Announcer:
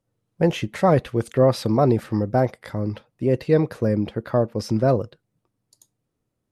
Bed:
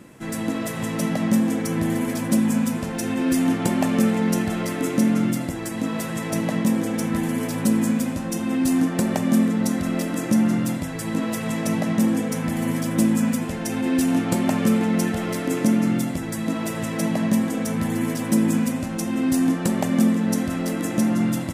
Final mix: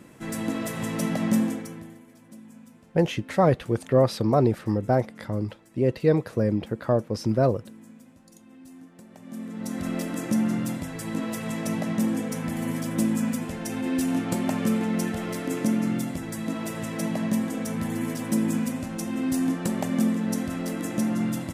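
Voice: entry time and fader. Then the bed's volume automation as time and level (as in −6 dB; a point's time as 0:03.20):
2.55 s, −2.5 dB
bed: 0:01.43 −3 dB
0:02.04 −27 dB
0:09.09 −27 dB
0:09.85 −5 dB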